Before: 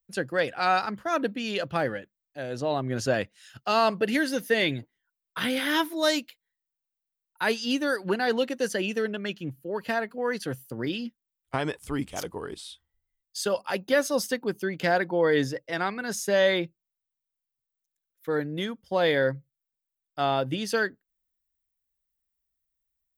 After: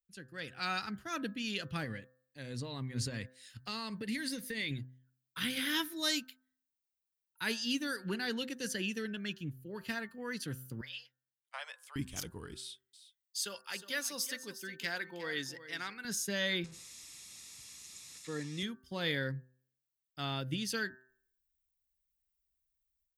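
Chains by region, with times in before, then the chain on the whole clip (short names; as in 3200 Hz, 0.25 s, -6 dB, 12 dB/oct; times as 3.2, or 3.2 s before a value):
1.84–4.71 ripple EQ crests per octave 0.96, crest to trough 7 dB + compressor, threshold -25 dBFS
10.81–11.96 steep high-pass 540 Hz 72 dB/oct + high shelf 3800 Hz -8.5 dB
12.57–16.05 HPF 740 Hz 6 dB/oct + echo 0.361 s -13.5 dB
16.64–18.63 delta modulation 64 kbps, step -38 dBFS + synth low-pass 7200 Hz, resonance Q 1.6 + notch comb 1500 Hz
whole clip: passive tone stack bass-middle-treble 6-0-2; de-hum 128.5 Hz, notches 14; AGC gain up to 12 dB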